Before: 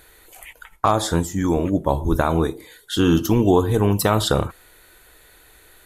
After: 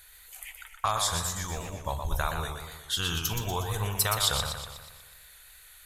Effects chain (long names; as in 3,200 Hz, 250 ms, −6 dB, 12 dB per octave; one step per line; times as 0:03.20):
guitar amp tone stack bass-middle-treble 10-0-10
feedback echo with a swinging delay time 121 ms, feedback 54%, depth 108 cents, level −6 dB